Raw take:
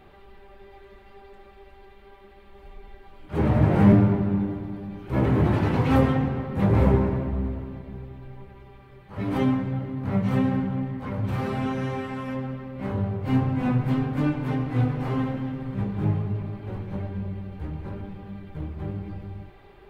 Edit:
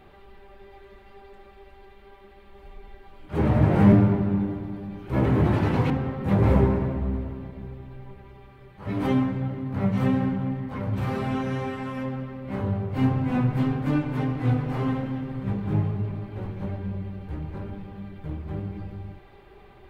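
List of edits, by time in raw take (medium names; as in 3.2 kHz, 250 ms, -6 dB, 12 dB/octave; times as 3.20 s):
5.90–6.21 s: delete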